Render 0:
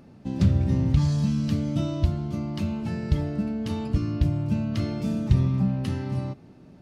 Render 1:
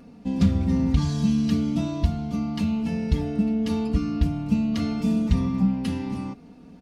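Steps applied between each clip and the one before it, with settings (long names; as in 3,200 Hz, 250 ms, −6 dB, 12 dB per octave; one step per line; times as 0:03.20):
comb filter 4.2 ms, depth 97%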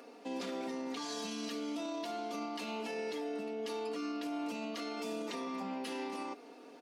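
Butterworth high-pass 330 Hz 36 dB per octave
brickwall limiter −34 dBFS, peak gain reduction 11.5 dB
level +2.5 dB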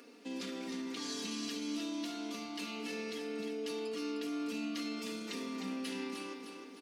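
parametric band 740 Hz −14 dB 1.3 octaves
repeating echo 307 ms, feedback 45%, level −6 dB
level +2 dB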